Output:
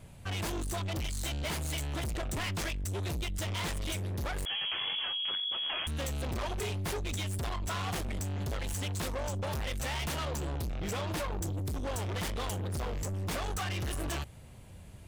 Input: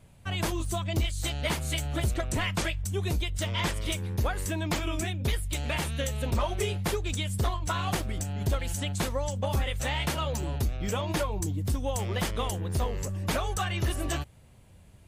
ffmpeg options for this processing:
-filter_complex "[0:a]asoftclip=type=tanh:threshold=-37dB,asettb=1/sr,asplit=3[a][b][c];[a]atrim=end=4.454[d];[b]atrim=start=4.45:end=5.87,asetpts=PTS-STARTPTS,afade=t=in:d=0.004:c=qsin,afade=t=out:st=1.416:d=0.004:c=qsin,lowpass=f=2.9k:t=q:w=0.5098,lowpass=f=2.9k:t=q:w=0.6013,lowpass=f=2.9k:t=q:w=0.9,lowpass=f=2.9k:t=q:w=2.563,afreqshift=-3400[e];[c]atrim=start=5.866[f];[d][e]acrossfade=d=0.004:c1=hsin:c2=qsin[g];[g][f]acrossfade=d=0.004:c1=qsin:c2=hsin,volume=4.5dB"

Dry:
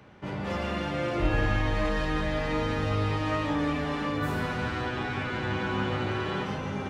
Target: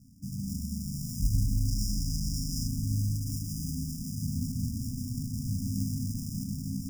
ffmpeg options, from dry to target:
-filter_complex "[0:a]acrusher=samples=28:mix=1:aa=0.000001,asettb=1/sr,asplit=3[a][b][c];[a]atrim=end=1.684[d];[b]atrim=start=1.68:end=2.68,asetpts=PTS-STARTPTS,afade=t=in:d=0.004:c=qsin,afade=t=out:st=0.996:d=0.004:c=qsin,equalizer=f=3.8k:t=o:w=1.2:g=13[e];[c]atrim=start=2.676[f];[d][e]acrossfade=d=0.004:c1=hsin:c2=qsin[g];[g][f]acrossfade=d=0.004:c1=qsin:c2=hsin,afftfilt=real='re*(1-between(b*sr/4096,290,4800))':imag='im*(1-between(b*sr/4096,290,4800))':win_size=4096:overlap=0.75"

